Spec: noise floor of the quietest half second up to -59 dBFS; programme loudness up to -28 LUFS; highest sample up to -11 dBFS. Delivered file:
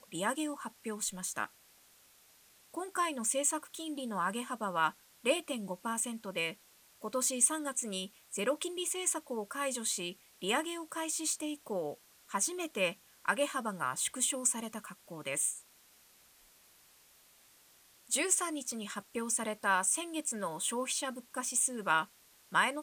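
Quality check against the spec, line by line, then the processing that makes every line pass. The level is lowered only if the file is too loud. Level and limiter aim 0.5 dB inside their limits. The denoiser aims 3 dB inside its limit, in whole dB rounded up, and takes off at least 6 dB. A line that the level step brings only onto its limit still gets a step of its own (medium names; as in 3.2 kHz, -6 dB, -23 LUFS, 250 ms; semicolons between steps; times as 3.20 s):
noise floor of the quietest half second -63 dBFS: pass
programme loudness -34.0 LUFS: pass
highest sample -14.0 dBFS: pass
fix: none needed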